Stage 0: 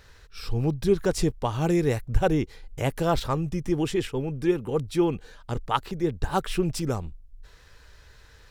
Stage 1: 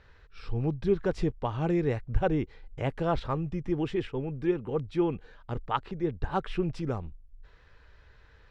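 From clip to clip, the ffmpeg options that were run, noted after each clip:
-af "lowpass=2800,volume=0.631"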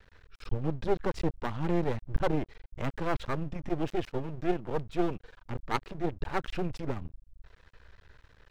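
-af "aeval=exprs='max(val(0),0)':c=same,volume=1.33"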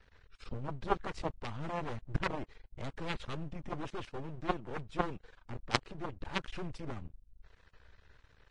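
-af "aeval=exprs='0.266*(cos(1*acos(clip(val(0)/0.266,-1,1)))-cos(1*PI/2))+0.119*(cos(3*acos(clip(val(0)/0.266,-1,1)))-cos(3*PI/2))':c=same,volume=1.68" -ar 22050 -c:a libvorbis -b:a 32k

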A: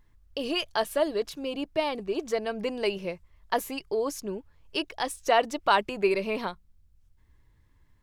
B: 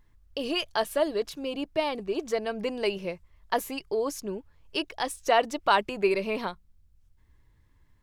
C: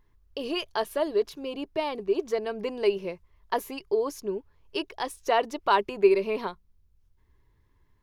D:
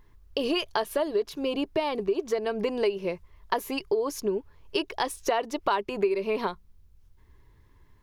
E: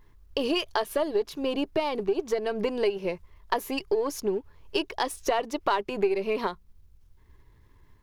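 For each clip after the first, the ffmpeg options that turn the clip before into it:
-af anull
-af "equalizer=f=400:t=o:w=0.33:g=9,equalizer=f=1000:t=o:w=0.33:g=5,equalizer=f=8000:t=o:w=0.33:g=-6,volume=0.708"
-af "acompressor=threshold=0.0282:ratio=5,volume=2.37"
-af "aeval=exprs='if(lt(val(0),0),0.708*val(0),val(0))':c=same,volume=1.19"

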